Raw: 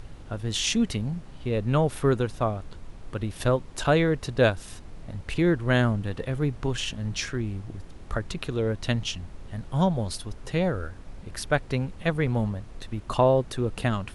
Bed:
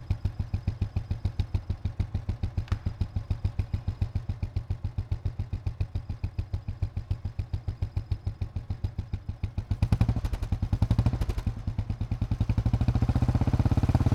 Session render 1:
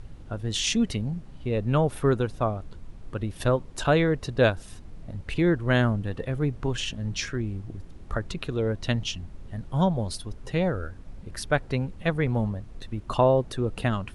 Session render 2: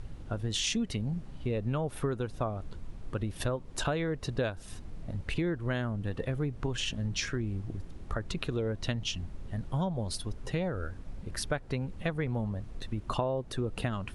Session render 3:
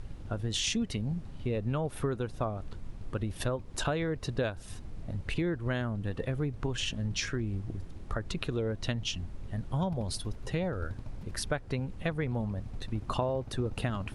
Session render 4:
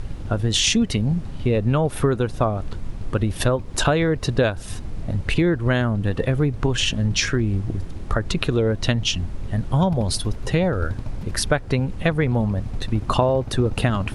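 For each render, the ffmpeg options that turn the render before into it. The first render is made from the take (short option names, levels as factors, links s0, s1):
-af "afftdn=nr=6:nf=-44"
-af "acompressor=threshold=0.0398:ratio=6"
-filter_complex "[1:a]volume=0.0944[s0];[0:a][s0]amix=inputs=2:normalize=0"
-af "volume=3.98"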